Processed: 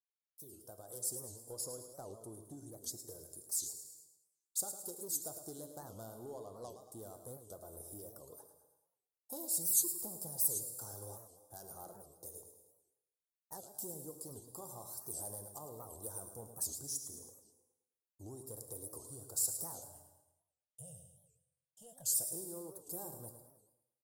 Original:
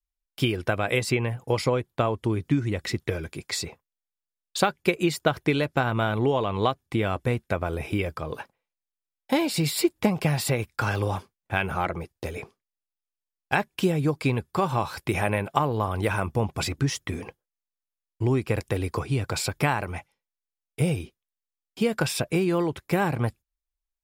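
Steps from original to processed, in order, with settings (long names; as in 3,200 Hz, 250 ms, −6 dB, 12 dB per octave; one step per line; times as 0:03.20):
fade in at the beginning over 1.26 s
soft clipping −17.5 dBFS, distortion −15 dB
0:19.81–0:22.07: drawn EQ curve 140 Hz 0 dB, 370 Hz −27 dB, 590 Hz 0 dB, 1,200 Hz −16 dB, 2,900 Hz +14 dB, 4,200 Hz −15 dB, 6,900 Hz −5 dB, 14,000 Hz −17 dB
noise gate −53 dBFS, range −9 dB
Chebyshev band-stop filter 570–8,700 Hz, order 2
first-order pre-emphasis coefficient 0.97
repeating echo 107 ms, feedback 45%, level −10 dB
convolution reverb, pre-delay 3 ms, DRR 9 dB
wow of a warped record 78 rpm, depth 250 cents
level +1.5 dB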